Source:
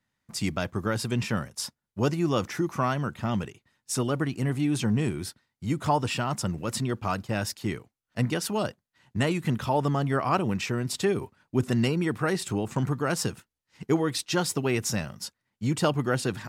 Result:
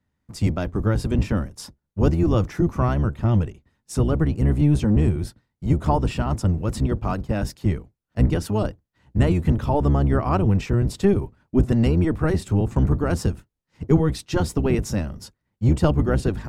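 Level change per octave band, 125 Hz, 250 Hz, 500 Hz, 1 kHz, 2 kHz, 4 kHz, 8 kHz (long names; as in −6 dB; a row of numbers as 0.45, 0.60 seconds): +9.0, +6.0, +4.0, +1.0, −2.5, −4.5, −5.5 decibels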